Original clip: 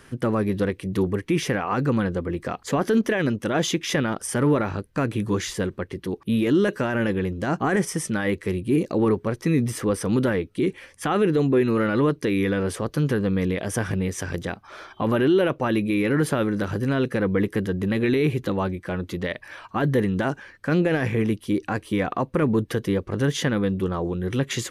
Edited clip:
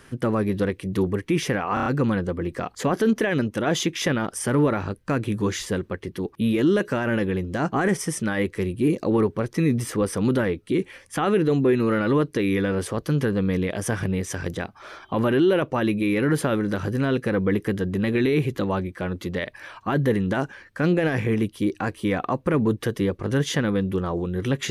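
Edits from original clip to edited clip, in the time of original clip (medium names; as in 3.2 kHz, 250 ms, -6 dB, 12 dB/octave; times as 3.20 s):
1.74 s: stutter 0.03 s, 5 plays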